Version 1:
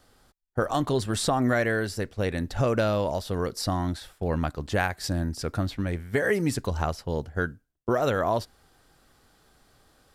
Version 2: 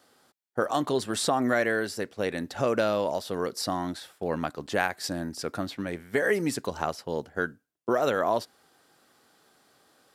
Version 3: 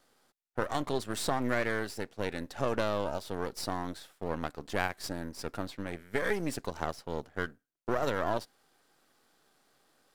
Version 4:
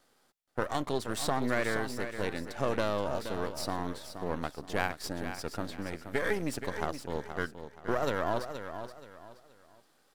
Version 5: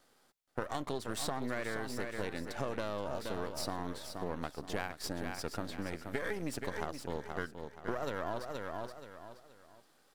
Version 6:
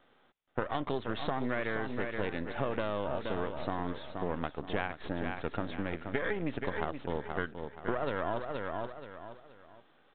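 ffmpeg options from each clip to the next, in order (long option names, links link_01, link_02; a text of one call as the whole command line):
ffmpeg -i in.wav -af "highpass=220" out.wav
ffmpeg -i in.wav -af "aeval=exprs='if(lt(val(0),0),0.251*val(0),val(0))':channel_layout=same,volume=-3dB" out.wav
ffmpeg -i in.wav -af "aecho=1:1:475|950|1425:0.335|0.104|0.0322" out.wav
ffmpeg -i in.wav -af "acompressor=threshold=-32dB:ratio=5" out.wav
ffmpeg -i in.wav -af "aresample=8000,aresample=44100,volume=4dB" out.wav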